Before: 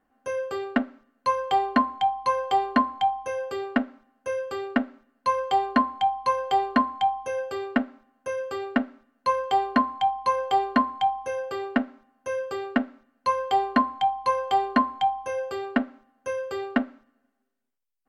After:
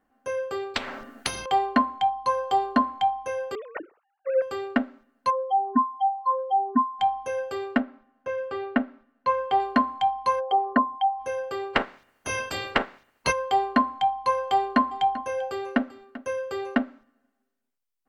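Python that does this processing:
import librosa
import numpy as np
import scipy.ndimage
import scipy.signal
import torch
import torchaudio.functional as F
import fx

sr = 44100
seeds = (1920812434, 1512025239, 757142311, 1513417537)

y = fx.spectral_comp(x, sr, ratio=10.0, at=(0.74, 1.46))
y = fx.peak_eq(y, sr, hz=2200.0, db=-8.0, octaves=0.57, at=(2.09, 2.82))
y = fx.sine_speech(y, sr, at=(3.55, 4.42))
y = fx.spec_expand(y, sr, power=2.7, at=(5.29, 6.98), fade=0.02)
y = fx.lowpass(y, sr, hz=3200.0, slope=12, at=(7.8, 9.6))
y = fx.envelope_sharpen(y, sr, power=2.0, at=(10.39, 11.19), fade=0.02)
y = fx.spec_clip(y, sr, under_db=26, at=(11.73, 13.31), fade=0.02)
y = fx.echo_single(y, sr, ms=391, db=-16.5, at=(14.52, 16.75))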